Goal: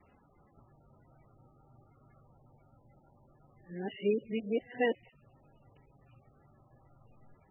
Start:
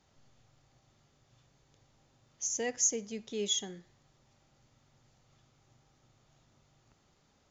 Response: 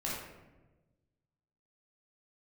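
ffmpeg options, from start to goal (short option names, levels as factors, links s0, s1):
-af "areverse,acontrast=55" -ar 24000 -c:a libmp3lame -b:a 8k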